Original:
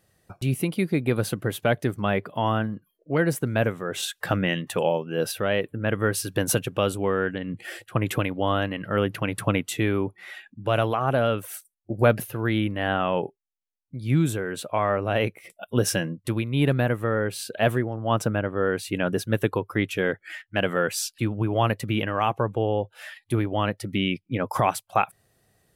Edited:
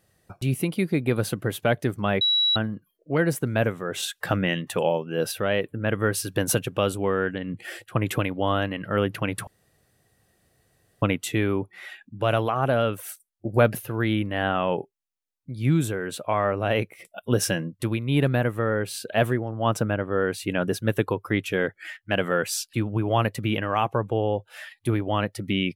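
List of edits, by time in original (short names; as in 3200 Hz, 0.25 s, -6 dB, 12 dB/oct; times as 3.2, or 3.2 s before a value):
2.21–2.56 bleep 3900 Hz -18 dBFS
9.47 insert room tone 1.55 s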